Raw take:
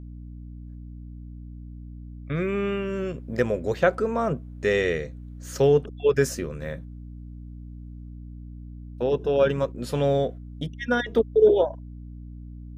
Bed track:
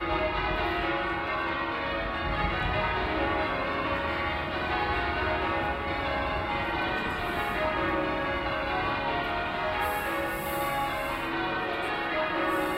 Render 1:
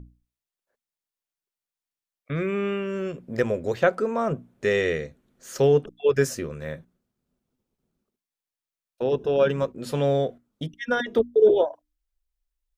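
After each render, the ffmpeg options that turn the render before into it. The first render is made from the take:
-af "bandreject=f=60:t=h:w=6,bandreject=f=120:t=h:w=6,bandreject=f=180:t=h:w=6,bandreject=f=240:t=h:w=6,bandreject=f=300:t=h:w=6"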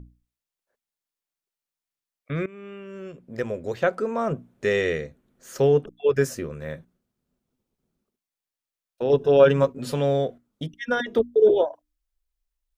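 -filter_complex "[0:a]asettb=1/sr,asplit=3[s0][s1][s2];[s0]atrim=end=5.014[s3];[s1]atrim=start=5.01:end=6.7,asetpts=PTS-STARTPTS,afade=t=in:d=0.004:c=qsin,afade=t=out:st=1.686:d=0.004:c=qsin,equalizer=f=5000:w=0.54:g=-3.5[s4];[s2]atrim=start=6.696[s5];[s3][s4]acrossfade=d=0.004:c1=hsin:c2=qsin[s6];[s6][s5]acrossfade=d=0.004:c1=qsin:c2=hsin,asettb=1/sr,asplit=3[s7][s8][s9];[s7]atrim=end=9.094[s10];[s8]atrim=start=9.09:end=9.94,asetpts=PTS-STARTPTS,afade=t=in:d=0.004:c=qsin,afade=t=out:st=0.846:d=0.004:c=qsin,aecho=1:1:7.2:0.95,atrim=end_sample=37485[s11];[s9]atrim=start=9.936[s12];[s10][s11]acrossfade=d=0.004:c1=hsin:c2=qsin[s13];[s13][s12]acrossfade=d=0.004:c1=qsin:c2=hsin,asplit=2[s14][s15];[s14]atrim=end=2.46,asetpts=PTS-STARTPTS,afade=t=out:st=2.456:d=0.004:c=hsin:silence=0.105925[s16];[s15]atrim=start=2.46,asetpts=PTS-STARTPTS,afade=t=in:d=1.85:silence=0.105925[s17];[s16][s17]concat=n=2:v=0:a=1"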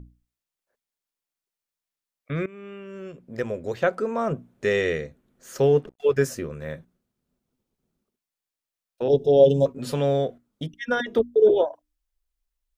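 -filter_complex "[0:a]asettb=1/sr,asplit=3[s0][s1][s2];[s0]atrim=end=5.614[s3];[s1]atrim=start=5.61:end=6.18,asetpts=PTS-STARTPTS,afade=t=in:d=0.004:c=qsin,afade=t=out:st=0.566:d=0.004:c=qsin,aeval=exprs='sgn(val(0))*max(abs(val(0))-0.00188,0)':c=same[s4];[s2]atrim=start=6.176[s5];[s3][s4]acrossfade=d=0.004:c1=hsin:c2=qsin[s6];[s6][s5]acrossfade=d=0.004:c1=qsin:c2=hsin,asettb=1/sr,asplit=3[s7][s8][s9];[s7]atrim=end=9.084[s10];[s8]atrim=start=9.08:end=9.66,asetpts=PTS-STARTPTS,afade=t=in:d=0.004:c=qsin,afade=t=out:st=0.576:d=0.004:c=qsin,asuperstop=centerf=1600:order=12:qfactor=0.7[s11];[s9]atrim=start=9.656[s12];[s10][s11]acrossfade=d=0.004:c1=hsin:c2=qsin[s13];[s13][s12]acrossfade=d=0.004:c1=qsin:c2=hsin"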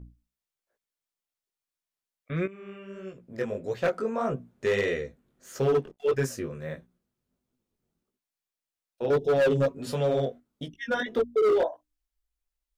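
-af "flanger=delay=15.5:depth=6.5:speed=1.6,asoftclip=type=hard:threshold=0.112"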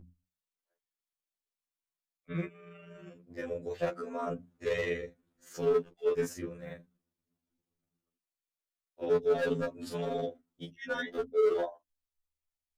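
-af "tremolo=f=25:d=0.947,afftfilt=real='re*2*eq(mod(b,4),0)':imag='im*2*eq(mod(b,4),0)':win_size=2048:overlap=0.75"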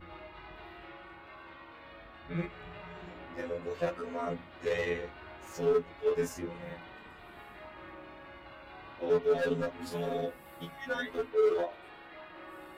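-filter_complex "[1:a]volume=0.0944[s0];[0:a][s0]amix=inputs=2:normalize=0"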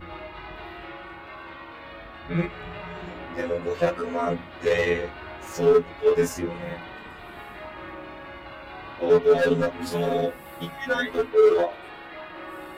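-af "volume=2.99"

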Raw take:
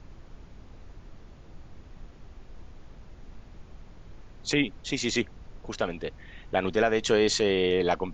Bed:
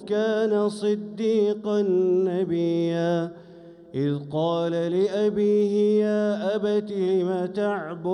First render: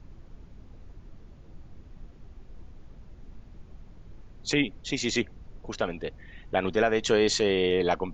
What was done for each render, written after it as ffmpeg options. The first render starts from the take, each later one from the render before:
-af "afftdn=nr=6:nf=-50"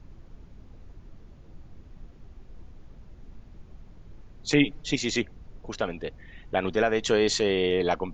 -filter_complex "[0:a]asettb=1/sr,asplit=3[s0][s1][s2];[s0]atrim=end=4.524[s3];[s1]atrim=start=4.52:end=4.96,asetpts=PTS-STARTPTS,afade=t=in:d=0.004:c=qsin,afade=t=out:st=0.436:d=0.004:c=qsin,aecho=1:1:6.6:0.89,atrim=end_sample=19404[s4];[s2]atrim=start=4.956[s5];[s3][s4]acrossfade=d=0.004:c1=hsin:c2=qsin[s6];[s6][s5]acrossfade=d=0.004:c1=qsin:c2=hsin"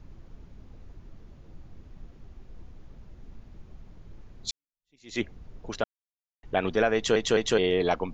-filter_complex "[0:a]asplit=7[s0][s1][s2][s3][s4][s5][s6];[s0]atrim=end=4.51,asetpts=PTS-STARTPTS,afade=t=out:st=4.506:d=0.004:c=hsin[s7];[s1]atrim=start=4.51:end=5.84,asetpts=PTS-STARTPTS,afade=t=in:d=0.7:c=exp,afade=t=out:st=1.326:d=0.004:c=hsin[s8];[s2]atrim=start=5.84:end=6.43,asetpts=PTS-STARTPTS,volume=0[s9];[s3]atrim=start=6.43:end=7.162,asetpts=PTS-STARTPTS,afade=t=in:d=0.004:c=hsin[s10];[s4]atrim=start=6.948:end=7.162[s11];[s5]atrim=start=6.948:end=7.162[s12];[s6]atrim=start=7.578[s13];[s7][s8][s9][s10]concat=n=4:v=0:a=1[s14];[s14][s11]acrossfade=d=0.004:c1=hsin:c2=hsin[s15];[s15][s12]acrossfade=d=0.004:c1=hsin:c2=hsin[s16];[s16][s13]acrossfade=d=0.004:c1=hsin:c2=hsin"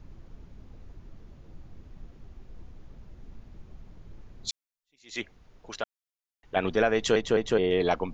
-filter_complex "[0:a]asettb=1/sr,asplit=3[s0][s1][s2];[s0]atrim=end=4.494[s3];[s1]atrim=start=4.49:end=6.56,asetpts=PTS-STARTPTS,afade=t=in:d=0.004:c=qsin,afade=t=out:st=2.066:d=0.004:c=qsin,lowshelf=f=500:g=-11.5[s4];[s2]atrim=start=6.556[s5];[s3][s4]acrossfade=d=0.004:c1=hsin:c2=qsin[s6];[s6][s5]acrossfade=d=0.004:c1=qsin:c2=hsin,asplit=3[s7][s8][s9];[s7]afade=t=out:st=7.2:d=0.02[s10];[s8]highshelf=f=2200:g=-10.5,afade=t=in:st=7.2:d=0.02,afade=t=out:st=7.7:d=0.02[s11];[s9]afade=t=in:st=7.7:d=0.02[s12];[s10][s11][s12]amix=inputs=3:normalize=0"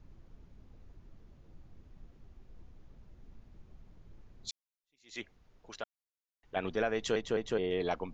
-af "volume=0.398"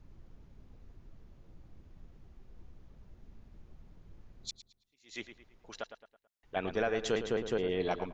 -filter_complex "[0:a]asplit=2[s0][s1];[s1]adelay=109,lowpass=f=3800:p=1,volume=0.316,asplit=2[s2][s3];[s3]adelay=109,lowpass=f=3800:p=1,volume=0.41,asplit=2[s4][s5];[s5]adelay=109,lowpass=f=3800:p=1,volume=0.41,asplit=2[s6][s7];[s7]adelay=109,lowpass=f=3800:p=1,volume=0.41[s8];[s0][s2][s4][s6][s8]amix=inputs=5:normalize=0"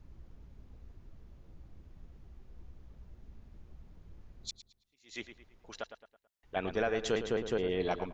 -af "equalizer=f=61:t=o:w=0.45:g=8"

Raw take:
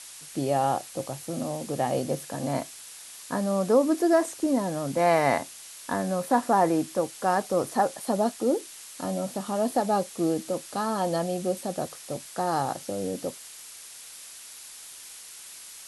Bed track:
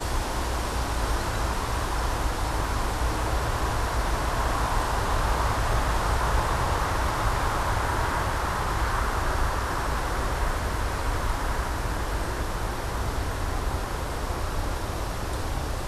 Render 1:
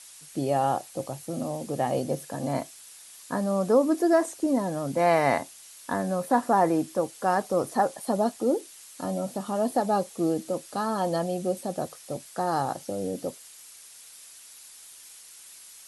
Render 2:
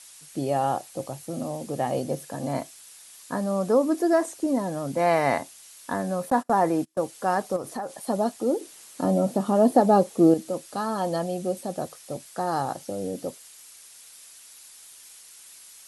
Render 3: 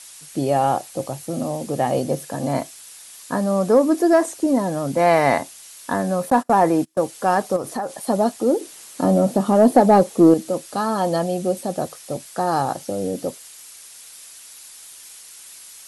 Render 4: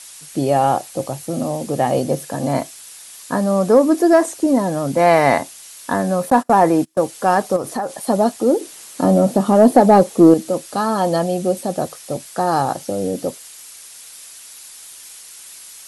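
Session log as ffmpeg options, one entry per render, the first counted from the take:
-af "afftdn=nr=6:nf=-45"
-filter_complex "[0:a]asettb=1/sr,asplit=3[s0][s1][s2];[s0]atrim=end=6.304[s3];[s1]atrim=start=6.3:end=7.01,asetpts=PTS-STARTPTS,afade=t=in:d=0.004:c=qsin,afade=t=out:st=0.706:d=0.004:c=qsin,agate=range=0.0398:threshold=0.0282:ratio=16:release=100:detection=peak[s4];[s2]atrim=start=7.006[s5];[s3][s4]acrossfade=d=0.004:c1=hsin:c2=qsin[s6];[s6][s5]acrossfade=d=0.004:c1=qsin:c2=hsin,asettb=1/sr,asplit=3[s7][s8][s9];[s7]atrim=end=7.564[s10];[s8]atrim=start=7.56:end=8.01,asetpts=PTS-STARTPTS,afade=t=in:d=0.004:c=qsin,afade=t=out:st=0.446:d=0.004:c=qsin,acompressor=threshold=0.0398:ratio=5:attack=3.2:release=140:knee=1:detection=peak[s11];[s9]atrim=start=8.006[s12];[s10][s11]acrossfade=d=0.004:c1=hsin:c2=qsin[s13];[s13][s12]acrossfade=d=0.004:c1=qsin:c2=hsin,asettb=1/sr,asplit=3[s14][s15][s16];[s14]atrim=end=8.614[s17];[s15]atrim=start=8.61:end=10.34,asetpts=PTS-STARTPTS,afade=t=in:d=0.004:c=qsin,afade=t=out:st=1.726:d=0.004:c=qsin,equalizer=f=300:w=0.35:g=9[s18];[s16]atrim=start=10.336[s19];[s17][s18]acrossfade=d=0.004:c1=hsin:c2=qsin[s20];[s20][s19]acrossfade=d=0.004:c1=qsin:c2=hsin"
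-af "acontrast=56"
-af "volume=1.41,alimiter=limit=0.891:level=0:latency=1"

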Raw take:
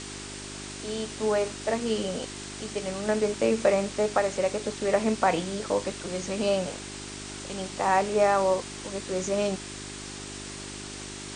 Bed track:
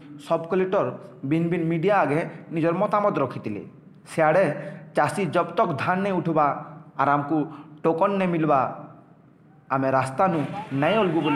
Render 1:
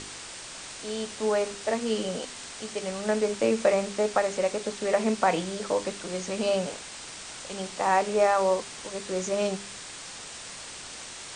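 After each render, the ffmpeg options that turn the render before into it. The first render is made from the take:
-af "bandreject=f=50:t=h:w=4,bandreject=f=100:t=h:w=4,bandreject=f=150:t=h:w=4,bandreject=f=200:t=h:w=4,bandreject=f=250:t=h:w=4,bandreject=f=300:t=h:w=4,bandreject=f=350:t=h:w=4,bandreject=f=400:t=h:w=4"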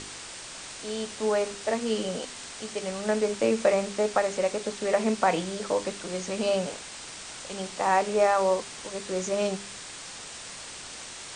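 -af anull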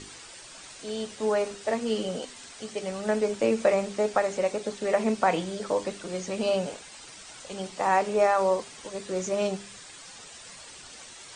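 -af "afftdn=nr=9:nf=-42"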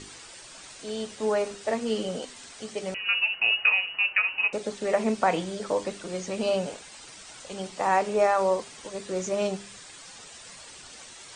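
-filter_complex "[0:a]asettb=1/sr,asplit=3[s0][s1][s2];[s0]atrim=end=2.944[s3];[s1]atrim=start=2.94:end=4.53,asetpts=PTS-STARTPTS,afade=t=in:d=0.004:c=qsin,afade=t=out:st=1.586:d=0.004:c=qsin,lowpass=f=2600:t=q:w=0.5098,lowpass=f=2600:t=q:w=0.6013,lowpass=f=2600:t=q:w=0.9,lowpass=f=2600:t=q:w=2.563,afreqshift=-3100[s4];[s2]atrim=start=4.526[s5];[s3][s4]acrossfade=d=0.004:c1=hsin:c2=qsin[s6];[s6][s5]acrossfade=d=0.004:c1=qsin:c2=hsin"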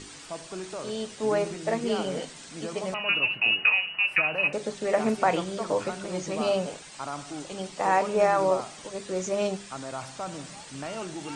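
-filter_complex "[1:a]volume=0.178[s0];[0:a][s0]amix=inputs=2:normalize=0"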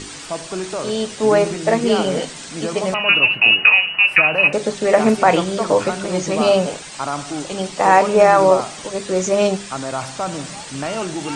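-af "volume=3.55,alimiter=limit=0.891:level=0:latency=1"

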